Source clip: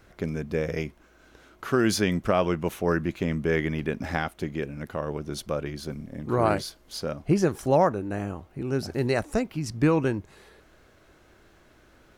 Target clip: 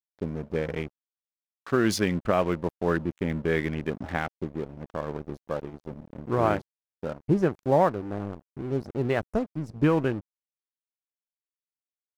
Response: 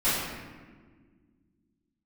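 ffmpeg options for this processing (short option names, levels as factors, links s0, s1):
-filter_complex "[0:a]afwtdn=0.0158,asettb=1/sr,asplit=3[s0][s1][s2];[s0]atrim=end=5.444[s3];[s1]atrim=start=5.44:end=5.91,asetpts=PTS-STARTPTS,afade=t=in:d=0.004:c=qsin,afade=t=out:st=0.466:d=0.004:c=qsin,lowshelf=f=150:g=-4.5[s4];[s2]atrim=start=5.906[s5];[s3][s4]acrossfade=d=0.004:c1=hsin:c2=qsin[s6];[s6][s5]acrossfade=d=0.004:c1=qsin:c2=hsin,aeval=exprs='sgn(val(0))*max(abs(val(0))-0.00944,0)':c=same"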